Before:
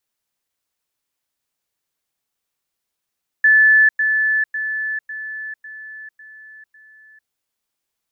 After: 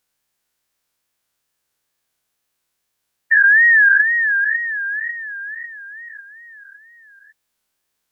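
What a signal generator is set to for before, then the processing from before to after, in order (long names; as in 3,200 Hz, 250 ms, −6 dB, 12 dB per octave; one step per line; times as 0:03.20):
level staircase 1,740 Hz −8.5 dBFS, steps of −6 dB, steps 7, 0.45 s 0.10 s
every bin's largest magnitude spread in time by 240 ms
hollow resonant body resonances 1,600 Hz, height 7 dB
tape wow and flutter 140 cents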